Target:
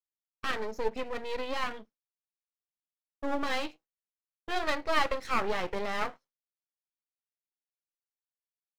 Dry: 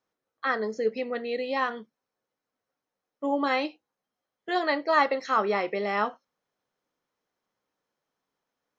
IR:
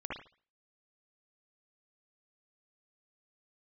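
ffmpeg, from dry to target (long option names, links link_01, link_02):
-af "agate=range=-33dB:threshold=-45dB:ratio=3:detection=peak,aeval=exprs='max(val(0),0)':channel_layout=same"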